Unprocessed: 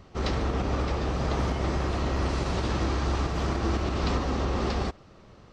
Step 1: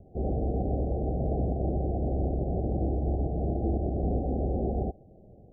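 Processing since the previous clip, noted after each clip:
Chebyshev low-pass filter 780 Hz, order 8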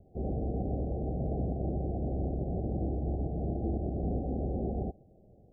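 dynamic equaliser 170 Hz, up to +4 dB, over −42 dBFS, Q 0.72
level −6 dB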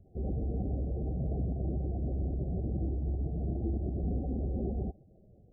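expanding power law on the bin magnitudes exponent 1.6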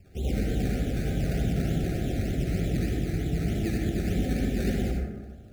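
sample-and-hold swept by an LFO 17×, swing 60% 3.3 Hz
convolution reverb RT60 1.3 s, pre-delay 53 ms, DRR −1.5 dB
level +3.5 dB

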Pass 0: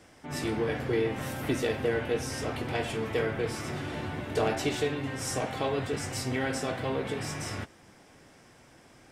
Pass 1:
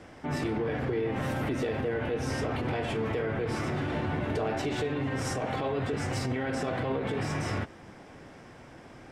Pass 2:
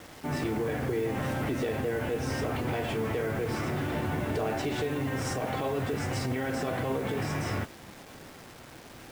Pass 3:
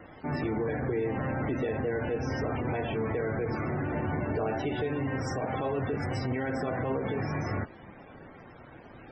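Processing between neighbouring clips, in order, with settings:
low-pass filter 2,000 Hz 6 dB per octave; downward compressor, threshold −31 dBFS, peak gain reduction 8 dB; brickwall limiter −30.5 dBFS, peak gain reduction 8 dB; level +8 dB
bit-depth reduction 8 bits, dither none
spectral peaks only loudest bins 64

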